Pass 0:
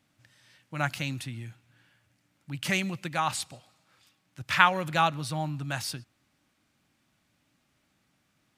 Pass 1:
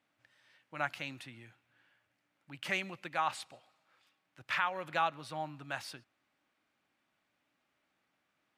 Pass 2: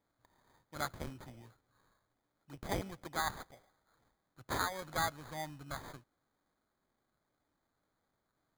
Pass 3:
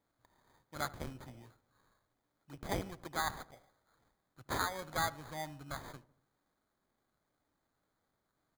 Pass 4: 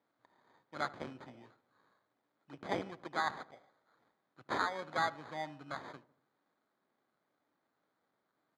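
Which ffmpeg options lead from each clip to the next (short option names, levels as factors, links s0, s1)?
-af "bass=f=250:g=-15,treble=f=4000:g=-11,alimiter=limit=0.178:level=0:latency=1:release=313,volume=0.631"
-af "acrusher=samples=16:mix=1:aa=0.000001,lowshelf=f=130:g=6.5,volume=0.668"
-filter_complex "[0:a]asplit=2[s0][s1];[s1]adelay=75,lowpass=f=1300:p=1,volume=0.133,asplit=2[s2][s3];[s3]adelay=75,lowpass=f=1300:p=1,volume=0.54,asplit=2[s4][s5];[s5]adelay=75,lowpass=f=1300:p=1,volume=0.54,asplit=2[s6][s7];[s7]adelay=75,lowpass=f=1300:p=1,volume=0.54,asplit=2[s8][s9];[s9]adelay=75,lowpass=f=1300:p=1,volume=0.54[s10];[s0][s2][s4][s6][s8][s10]amix=inputs=6:normalize=0"
-af "highpass=210,lowpass=3600,volume=1.26"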